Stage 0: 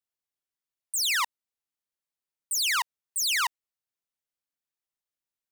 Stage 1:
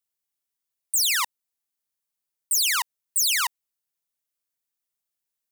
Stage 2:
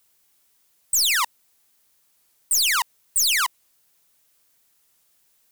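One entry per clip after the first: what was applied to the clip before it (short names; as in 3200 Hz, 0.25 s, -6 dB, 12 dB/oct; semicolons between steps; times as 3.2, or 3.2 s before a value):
high shelf 6000 Hz +9.5 dB
power-law curve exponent 0.7; record warp 45 rpm, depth 100 cents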